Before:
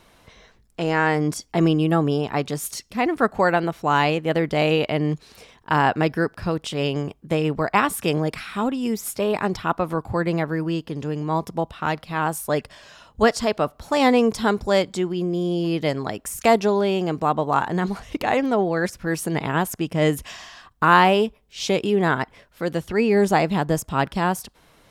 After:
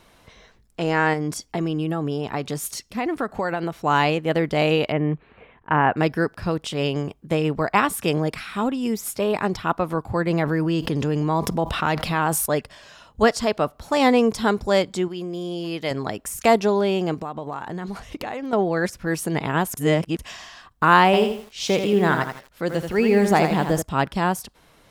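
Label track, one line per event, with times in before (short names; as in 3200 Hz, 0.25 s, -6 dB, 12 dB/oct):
1.130000	3.820000	compressor 5:1, threshold -20 dBFS
4.920000	5.970000	inverse Chebyshev low-pass stop band from 5000 Hz
10.300000	12.460000	fast leveller amount 70%
15.080000	15.910000	low shelf 460 Hz -9 dB
17.140000	18.530000	compressor 8:1, threshold -26 dBFS
19.770000	20.190000	reverse
21.050000	23.820000	lo-fi delay 83 ms, feedback 35%, word length 7-bit, level -6.5 dB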